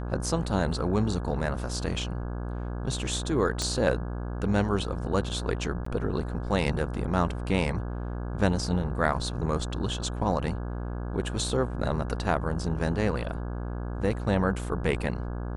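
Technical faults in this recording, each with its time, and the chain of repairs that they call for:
buzz 60 Hz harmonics 28 -33 dBFS
3.62 pop -15 dBFS
5.85–5.86 gap 14 ms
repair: de-click; de-hum 60 Hz, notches 28; interpolate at 5.85, 14 ms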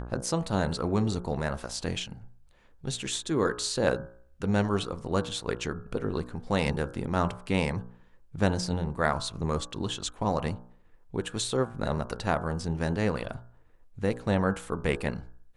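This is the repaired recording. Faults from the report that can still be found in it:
3.62 pop

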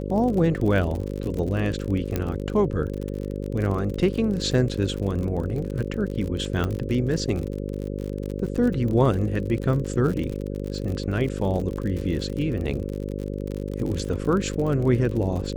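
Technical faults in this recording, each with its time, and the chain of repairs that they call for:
buzz 50 Hz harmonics 11 -30 dBFS
crackle 49/s -29 dBFS
2.16 pop -11 dBFS
6.64 pop -14 dBFS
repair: de-click; de-hum 50 Hz, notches 11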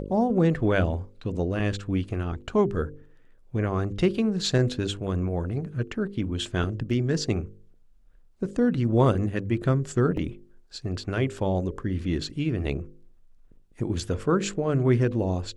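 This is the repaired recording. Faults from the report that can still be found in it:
none

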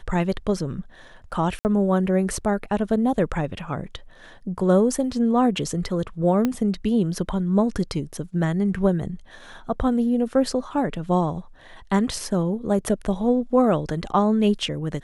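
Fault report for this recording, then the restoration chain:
1.59–1.65 gap 59 ms
6.45 pop -10 dBFS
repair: de-click; interpolate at 1.59, 59 ms

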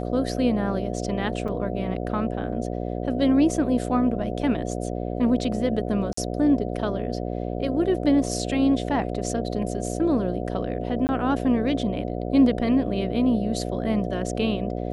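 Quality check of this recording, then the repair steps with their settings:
buzz 60 Hz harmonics 12 -29 dBFS
1.48–1.49 gap 5.4 ms
6.13–6.17 gap 44 ms
11.07–11.09 gap 19 ms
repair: de-hum 60 Hz, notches 12; interpolate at 1.48, 5.4 ms; interpolate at 6.13, 44 ms; interpolate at 11.07, 19 ms

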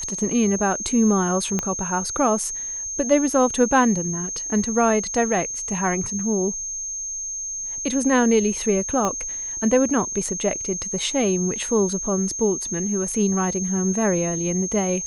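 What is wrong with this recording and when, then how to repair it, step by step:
tone 6400 Hz -27 dBFS
1.59 pop -9 dBFS
9.05 pop -11 dBFS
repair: de-click; notch 6400 Hz, Q 30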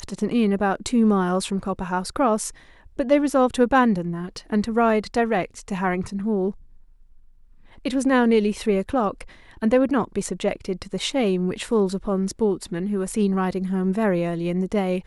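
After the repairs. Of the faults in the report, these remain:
1.59 pop
9.05 pop

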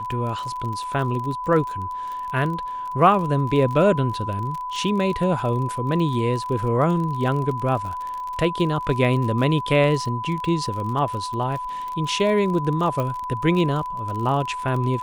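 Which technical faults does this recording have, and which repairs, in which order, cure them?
crackle 35/s -28 dBFS
tone 1000 Hz -27 dBFS
13 pop -14 dBFS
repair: de-click; notch 1000 Hz, Q 30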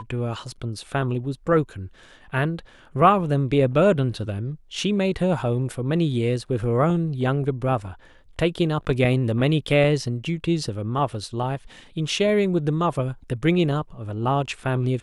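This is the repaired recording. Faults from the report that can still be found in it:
none

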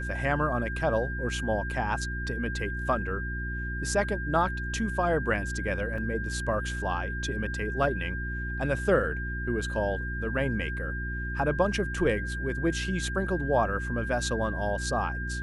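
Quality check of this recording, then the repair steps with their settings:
hum 60 Hz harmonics 6 -34 dBFS
tone 1600 Hz -35 dBFS
5.98 gap 2.7 ms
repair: notch 1600 Hz, Q 30; de-hum 60 Hz, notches 6; interpolate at 5.98, 2.7 ms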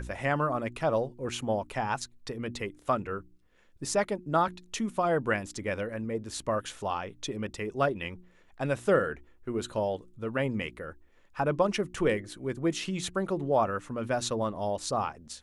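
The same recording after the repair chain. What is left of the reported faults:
none

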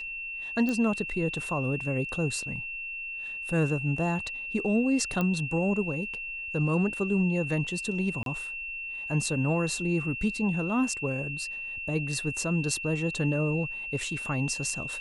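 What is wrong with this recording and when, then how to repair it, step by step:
tone 2700 Hz -34 dBFS
0.69 pop -17 dBFS
5.21 pop -16 dBFS
8.23–8.26 gap 32 ms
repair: de-click; notch 2700 Hz, Q 30; interpolate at 8.23, 32 ms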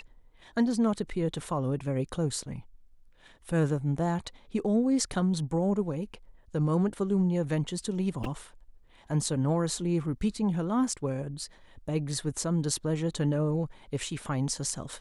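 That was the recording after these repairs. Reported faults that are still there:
0.69 pop

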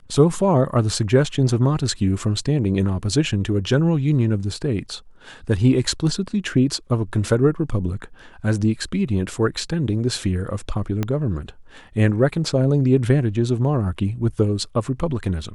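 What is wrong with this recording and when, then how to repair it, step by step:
11.03 pop -10 dBFS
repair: de-click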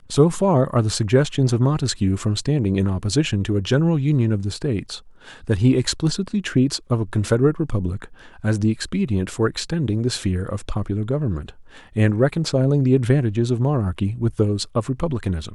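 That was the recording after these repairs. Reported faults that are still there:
11.03 pop

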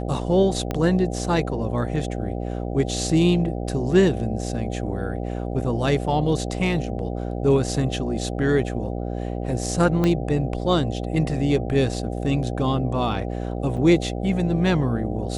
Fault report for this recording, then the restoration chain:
buzz 60 Hz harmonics 13 -28 dBFS
0.71 pop -12 dBFS
10.04 pop -10 dBFS
13.77–13.78 gap 6.4 ms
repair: de-click; de-hum 60 Hz, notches 13; interpolate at 13.77, 6.4 ms

